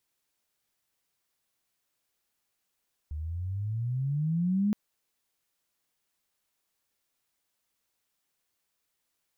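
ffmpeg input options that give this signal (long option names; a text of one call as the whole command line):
ffmpeg -f lavfi -i "aevalsrc='pow(10,(-22.5+10*(t/1.62-1))/20)*sin(2*PI*73.1*1.62/(18.5*log(2)/12)*(exp(18.5*log(2)/12*t/1.62)-1))':duration=1.62:sample_rate=44100" out.wav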